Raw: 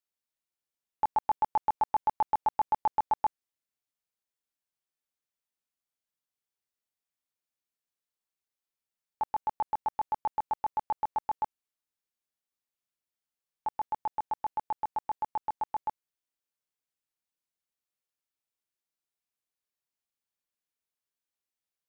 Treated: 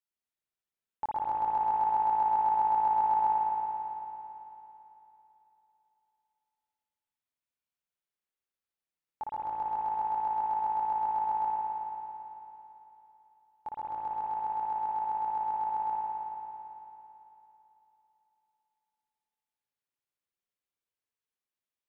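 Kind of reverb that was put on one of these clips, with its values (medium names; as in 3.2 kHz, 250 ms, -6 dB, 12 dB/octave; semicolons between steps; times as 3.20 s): spring tank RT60 3.3 s, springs 55 ms, chirp 60 ms, DRR -4.5 dB; trim -7 dB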